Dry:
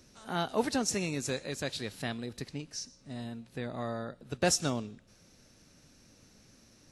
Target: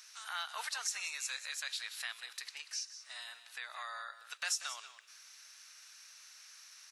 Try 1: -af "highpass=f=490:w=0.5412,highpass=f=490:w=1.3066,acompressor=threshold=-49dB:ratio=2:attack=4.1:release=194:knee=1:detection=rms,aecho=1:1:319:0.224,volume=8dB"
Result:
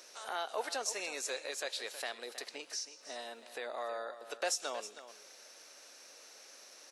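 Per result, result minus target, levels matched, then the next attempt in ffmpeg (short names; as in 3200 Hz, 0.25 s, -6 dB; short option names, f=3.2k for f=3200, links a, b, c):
500 Hz band +20.0 dB; echo 0.133 s late
-af "highpass=f=1.2k:w=0.5412,highpass=f=1.2k:w=1.3066,acompressor=threshold=-49dB:ratio=2:attack=4.1:release=194:knee=1:detection=rms,aecho=1:1:319:0.224,volume=8dB"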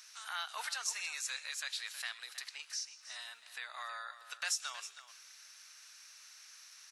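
echo 0.133 s late
-af "highpass=f=1.2k:w=0.5412,highpass=f=1.2k:w=1.3066,acompressor=threshold=-49dB:ratio=2:attack=4.1:release=194:knee=1:detection=rms,aecho=1:1:186:0.224,volume=8dB"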